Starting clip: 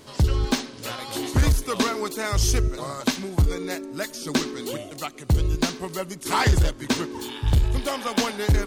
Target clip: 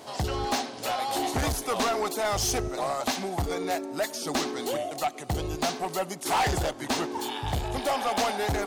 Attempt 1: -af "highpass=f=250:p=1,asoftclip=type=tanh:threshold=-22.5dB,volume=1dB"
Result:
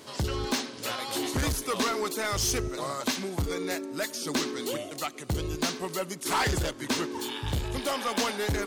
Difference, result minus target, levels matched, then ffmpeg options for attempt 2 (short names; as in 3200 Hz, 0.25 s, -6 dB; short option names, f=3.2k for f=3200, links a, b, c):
1000 Hz band -4.0 dB
-af "highpass=f=250:p=1,equalizer=f=740:w=2.8:g=14.5,asoftclip=type=tanh:threshold=-22.5dB,volume=1dB"